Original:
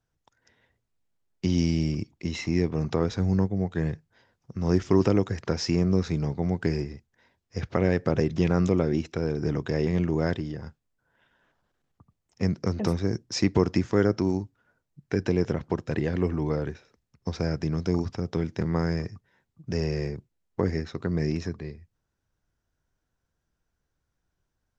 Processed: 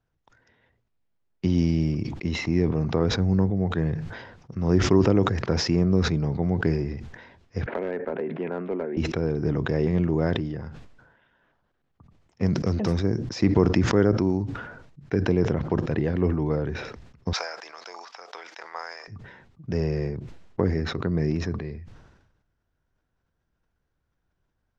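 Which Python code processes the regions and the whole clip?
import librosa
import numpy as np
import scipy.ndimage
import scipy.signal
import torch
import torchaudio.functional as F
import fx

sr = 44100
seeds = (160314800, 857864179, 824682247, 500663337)

y = fx.chain(x, sr, fx.cabinet(low_hz=290.0, low_slope=24, high_hz=2100.0, hz=(320.0, 510.0, 770.0, 1200.0, 1900.0), db=(-10, -5, -4, -9, -3)),
    fx.clip_hard(threshold_db=-22.5),
    fx.band_squash(depth_pct=40), at=(7.66, 8.97))
y = fx.chain(y, sr, fx.high_shelf(hz=3500.0, db=9.5),
    fx.clip_hard(threshold_db=-17.5), at=(12.46, 13.03))
y = fx.chain(y, sr, fx.highpass(hz=750.0, slope=24),
    fx.high_shelf(hz=4500.0, db=8.5), at=(17.33, 19.08))
y = fx.dynamic_eq(y, sr, hz=2300.0, q=0.86, threshold_db=-44.0, ratio=4.0, max_db=-3)
y = scipy.signal.sosfilt(scipy.signal.bessel(2, 3200.0, 'lowpass', norm='mag', fs=sr, output='sos'), y)
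y = fx.sustainer(y, sr, db_per_s=53.0)
y = y * librosa.db_to_amplitude(2.0)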